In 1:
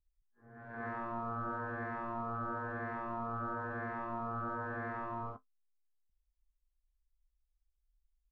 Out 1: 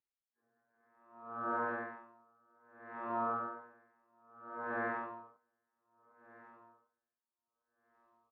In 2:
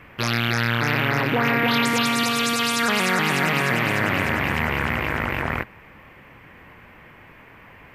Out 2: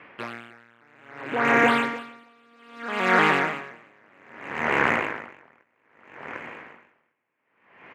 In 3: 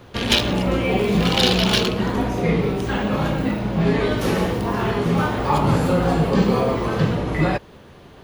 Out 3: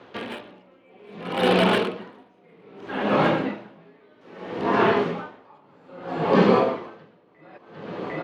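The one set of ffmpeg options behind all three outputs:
ffmpeg -i in.wav -filter_complex "[0:a]highpass=270,lowpass=3300,acrossover=split=2600[link_01][link_02];[link_02]acompressor=threshold=-37dB:ratio=4:attack=1:release=60[link_03];[link_01][link_03]amix=inputs=2:normalize=0,acrossover=split=2300[link_04][link_05];[link_05]asoftclip=type=hard:threshold=-31dB[link_06];[link_04][link_06]amix=inputs=2:normalize=0,aecho=1:1:752|1504|2256|3008:0.224|0.094|0.0395|0.0166,dynaudnorm=framelen=140:gausssize=5:maxgain=5.5dB,aeval=exprs='val(0)*pow(10,-38*(0.5-0.5*cos(2*PI*0.62*n/s))/20)':channel_layout=same" out.wav

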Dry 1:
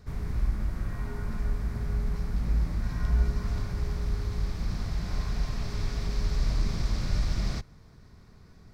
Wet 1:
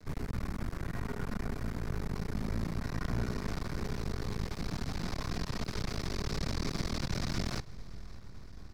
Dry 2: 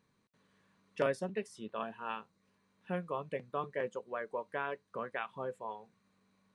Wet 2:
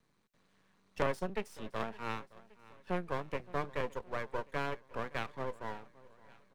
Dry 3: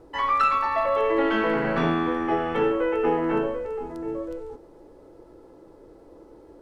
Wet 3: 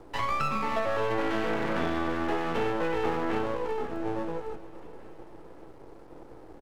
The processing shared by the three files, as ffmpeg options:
ffmpeg -i in.wav -filter_complex "[0:a]aeval=exprs='max(val(0),0)':channel_layout=same,aecho=1:1:567|1134|1701|2268:0.0841|0.048|0.0273|0.0156,acrossover=split=130|900[link_01][link_02][link_03];[link_01]acompressor=threshold=-39dB:ratio=4[link_04];[link_02]acompressor=threshold=-32dB:ratio=4[link_05];[link_03]acompressor=threshold=-38dB:ratio=4[link_06];[link_04][link_05][link_06]amix=inputs=3:normalize=0,volume=4dB" out.wav

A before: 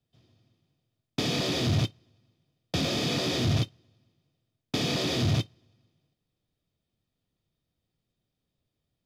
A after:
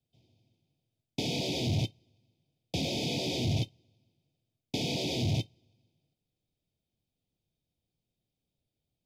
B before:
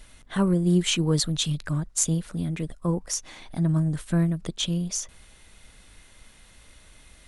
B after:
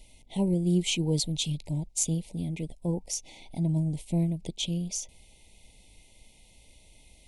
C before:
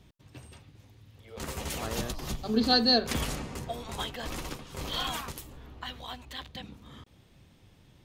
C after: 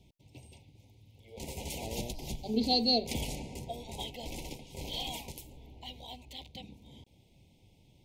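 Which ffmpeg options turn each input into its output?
ffmpeg -i in.wav -af "asuperstop=centerf=1400:order=12:qfactor=1.2,volume=-4dB" out.wav

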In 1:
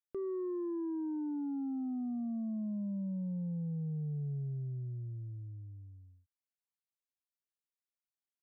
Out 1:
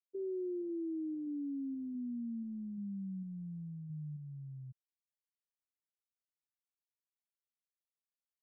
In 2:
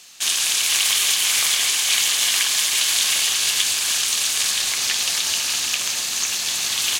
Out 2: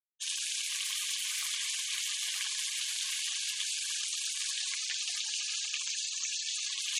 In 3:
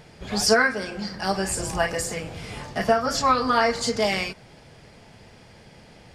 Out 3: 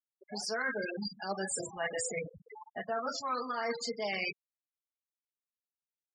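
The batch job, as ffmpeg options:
ffmpeg -i in.wav -af "highpass=frequency=320:poles=1,afftfilt=real='re*gte(hypot(re,im),0.0631)':imag='im*gte(hypot(re,im),0.0631)':win_size=1024:overlap=0.75,areverse,acompressor=threshold=-34dB:ratio=8,areverse,volume=1.5dB" out.wav

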